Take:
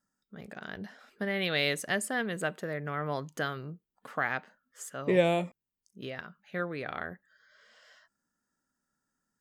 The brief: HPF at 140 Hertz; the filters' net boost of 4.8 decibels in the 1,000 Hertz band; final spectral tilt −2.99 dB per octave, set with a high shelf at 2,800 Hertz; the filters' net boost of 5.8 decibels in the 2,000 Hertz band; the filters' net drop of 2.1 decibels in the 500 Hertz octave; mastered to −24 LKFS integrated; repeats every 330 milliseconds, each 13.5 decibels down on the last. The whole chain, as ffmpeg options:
ffmpeg -i in.wav -af "highpass=140,equalizer=frequency=500:width_type=o:gain=-5,equalizer=frequency=1000:width_type=o:gain=7,equalizer=frequency=2000:width_type=o:gain=3.5,highshelf=frequency=2800:gain=4.5,aecho=1:1:330|660:0.211|0.0444,volume=6dB" out.wav

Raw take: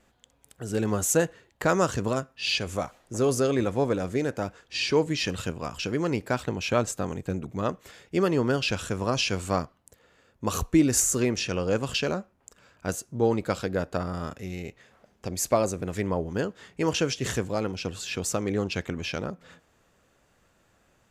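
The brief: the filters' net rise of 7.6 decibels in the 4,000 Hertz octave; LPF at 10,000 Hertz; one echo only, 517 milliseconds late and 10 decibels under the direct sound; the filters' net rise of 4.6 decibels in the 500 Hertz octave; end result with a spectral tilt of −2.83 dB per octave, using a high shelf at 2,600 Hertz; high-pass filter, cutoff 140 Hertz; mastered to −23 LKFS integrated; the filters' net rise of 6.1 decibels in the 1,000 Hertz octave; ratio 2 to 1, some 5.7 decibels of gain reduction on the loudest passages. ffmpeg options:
ffmpeg -i in.wav -af "highpass=140,lowpass=10000,equalizer=frequency=500:width_type=o:gain=4,equalizer=frequency=1000:width_type=o:gain=5.5,highshelf=frequency=2600:gain=6,equalizer=frequency=4000:width_type=o:gain=4.5,acompressor=threshold=-23dB:ratio=2,aecho=1:1:517:0.316,volume=3.5dB" out.wav

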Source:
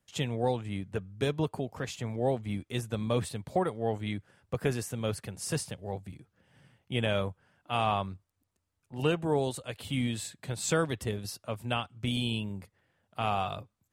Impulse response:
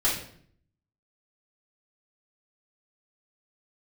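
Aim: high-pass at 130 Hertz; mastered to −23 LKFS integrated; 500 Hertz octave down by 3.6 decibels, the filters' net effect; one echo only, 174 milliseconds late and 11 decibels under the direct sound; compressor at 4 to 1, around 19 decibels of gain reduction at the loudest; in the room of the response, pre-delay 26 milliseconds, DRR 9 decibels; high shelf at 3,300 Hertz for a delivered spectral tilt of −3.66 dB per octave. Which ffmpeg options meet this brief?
-filter_complex "[0:a]highpass=130,equalizer=frequency=500:width_type=o:gain=-4.5,highshelf=frequency=3300:gain=6.5,acompressor=threshold=-48dB:ratio=4,aecho=1:1:174:0.282,asplit=2[link_01][link_02];[1:a]atrim=start_sample=2205,adelay=26[link_03];[link_02][link_03]afir=irnorm=-1:irlink=0,volume=-20.5dB[link_04];[link_01][link_04]amix=inputs=2:normalize=0,volume=25.5dB"

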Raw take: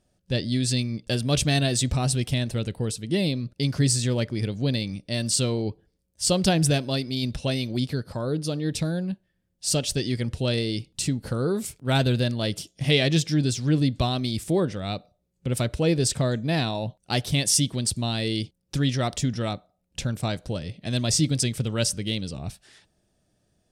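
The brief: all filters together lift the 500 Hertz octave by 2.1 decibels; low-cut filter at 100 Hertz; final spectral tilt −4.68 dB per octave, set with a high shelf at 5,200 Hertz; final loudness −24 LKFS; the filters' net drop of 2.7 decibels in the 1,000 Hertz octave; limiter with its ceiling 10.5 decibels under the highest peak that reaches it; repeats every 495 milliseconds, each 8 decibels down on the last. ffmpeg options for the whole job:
ffmpeg -i in.wav -af "highpass=100,equalizer=frequency=500:width_type=o:gain=4.5,equalizer=frequency=1000:width_type=o:gain=-7.5,highshelf=frequency=5200:gain=3,alimiter=limit=-17dB:level=0:latency=1,aecho=1:1:495|990|1485|1980|2475:0.398|0.159|0.0637|0.0255|0.0102,volume=3dB" out.wav

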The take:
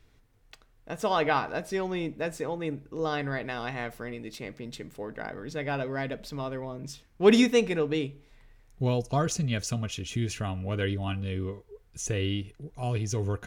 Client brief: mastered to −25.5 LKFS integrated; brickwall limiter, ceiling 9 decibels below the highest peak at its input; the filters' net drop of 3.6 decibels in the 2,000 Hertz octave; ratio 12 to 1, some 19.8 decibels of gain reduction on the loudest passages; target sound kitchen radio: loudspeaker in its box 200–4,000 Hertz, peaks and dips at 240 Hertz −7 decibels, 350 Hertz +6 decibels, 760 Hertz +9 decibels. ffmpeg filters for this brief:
ffmpeg -i in.wav -af "equalizer=frequency=2000:width_type=o:gain=-5,acompressor=threshold=-34dB:ratio=12,alimiter=level_in=9.5dB:limit=-24dB:level=0:latency=1,volume=-9.5dB,highpass=200,equalizer=frequency=240:width_type=q:width=4:gain=-7,equalizer=frequency=350:width_type=q:width=4:gain=6,equalizer=frequency=760:width_type=q:width=4:gain=9,lowpass=frequency=4000:width=0.5412,lowpass=frequency=4000:width=1.3066,volume=17.5dB" out.wav

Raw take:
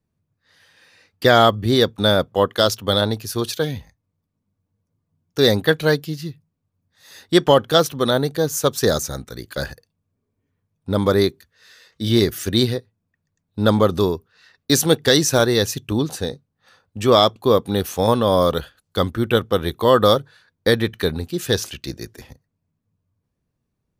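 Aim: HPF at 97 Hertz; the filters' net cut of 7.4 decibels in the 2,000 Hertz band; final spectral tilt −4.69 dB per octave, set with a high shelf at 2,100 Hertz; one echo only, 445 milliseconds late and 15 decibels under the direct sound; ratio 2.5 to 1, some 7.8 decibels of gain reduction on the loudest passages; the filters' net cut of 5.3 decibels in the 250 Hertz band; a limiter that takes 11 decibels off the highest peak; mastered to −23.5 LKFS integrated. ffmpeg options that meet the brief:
ffmpeg -i in.wav -af "highpass=97,equalizer=frequency=250:width_type=o:gain=-7,equalizer=frequency=2000:width_type=o:gain=-8,highshelf=frequency=2100:gain=-4,acompressor=threshold=-23dB:ratio=2.5,alimiter=limit=-20.5dB:level=0:latency=1,aecho=1:1:445:0.178,volume=9.5dB" out.wav

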